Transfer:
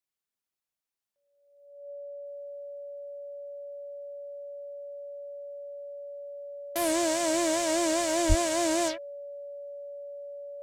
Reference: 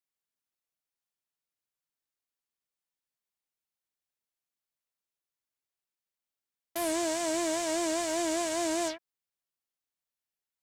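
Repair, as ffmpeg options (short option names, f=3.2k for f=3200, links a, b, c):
-filter_complex "[0:a]bandreject=f=570:w=30,asplit=3[a][b][c];[a]afade=t=out:st=8.28:d=0.02[d];[b]highpass=f=140:w=0.5412,highpass=f=140:w=1.3066,afade=t=in:st=8.28:d=0.02,afade=t=out:st=8.4:d=0.02[e];[c]afade=t=in:st=8.4:d=0.02[f];[d][e][f]amix=inputs=3:normalize=0,asetnsamples=n=441:p=0,asendcmd='2.25 volume volume -3.5dB',volume=0dB"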